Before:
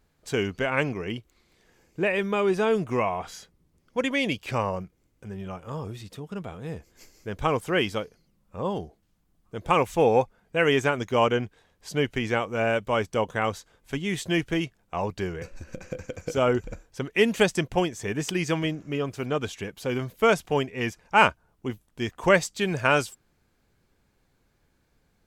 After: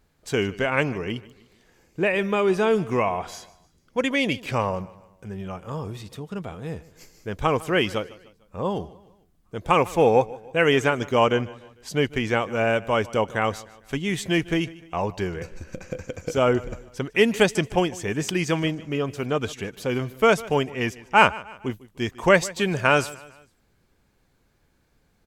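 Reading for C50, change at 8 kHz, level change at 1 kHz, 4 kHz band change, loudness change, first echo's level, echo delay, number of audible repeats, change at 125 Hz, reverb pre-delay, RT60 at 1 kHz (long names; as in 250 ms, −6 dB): no reverb audible, +2.5 dB, +2.5 dB, +2.5 dB, +2.5 dB, −20.0 dB, 150 ms, 3, +2.5 dB, no reverb audible, no reverb audible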